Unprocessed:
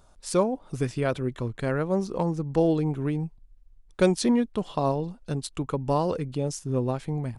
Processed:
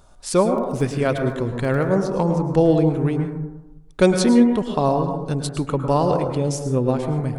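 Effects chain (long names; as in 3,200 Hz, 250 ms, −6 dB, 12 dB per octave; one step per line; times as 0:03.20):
0:00.53–0:01.84: surface crackle 17 per second −36 dBFS
dense smooth reverb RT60 1 s, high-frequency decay 0.25×, pre-delay 95 ms, DRR 5 dB
level +5.5 dB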